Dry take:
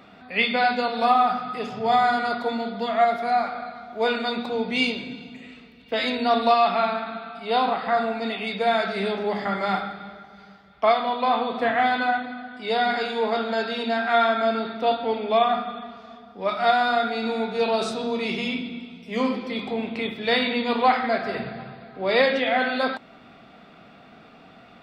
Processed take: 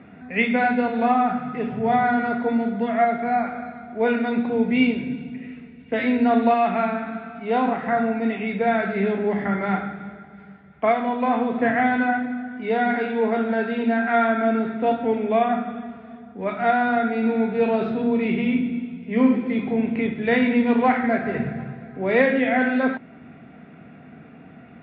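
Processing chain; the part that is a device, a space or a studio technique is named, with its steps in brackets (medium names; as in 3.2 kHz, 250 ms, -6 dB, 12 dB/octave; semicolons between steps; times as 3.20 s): bass cabinet (cabinet simulation 61–2200 Hz, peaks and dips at 85 Hz +7 dB, 150 Hz +8 dB, 250 Hz +5 dB, 590 Hz -5 dB, 840 Hz -6 dB, 1.2 kHz -10 dB); trim +4 dB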